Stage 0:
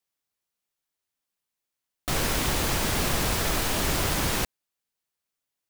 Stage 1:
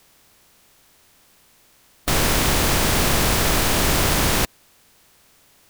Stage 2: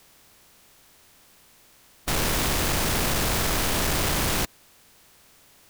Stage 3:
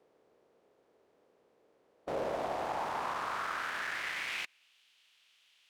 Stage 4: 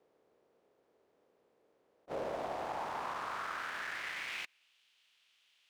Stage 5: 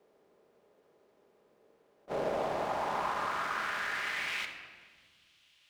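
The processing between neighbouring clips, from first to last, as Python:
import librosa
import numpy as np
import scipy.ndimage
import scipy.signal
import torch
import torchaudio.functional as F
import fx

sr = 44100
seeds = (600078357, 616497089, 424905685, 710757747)

y1 = fx.bin_compress(x, sr, power=0.6)
y1 = F.gain(torch.from_numpy(y1), 4.5).numpy()
y2 = 10.0 ** (-21.0 / 20.0) * np.tanh(y1 / 10.0 ** (-21.0 / 20.0))
y3 = fx.filter_sweep_bandpass(y2, sr, from_hz=460.0, to_hz=3000.0, start_s=1.88, end_s=4.77, q=2.9)
y3 = fx.rider(y3, sr, range_db=10, speed_s=0.5)
y4 = scipy.signal.medfilt(y3, 3)
y4 = fx.attack_slew(y4, sr, db_per_s=540.0)
y4 = F.gain(torch.from_numpy(y4), -3.5).numpy()
y5 = fx.room_shoebox(y4, sr, seeds[0], volume_m3=1900.0, walls='mixed', distance_m=1.3)
y5 = F.gain(torch.from_numpy(y5), 4.0).numpy()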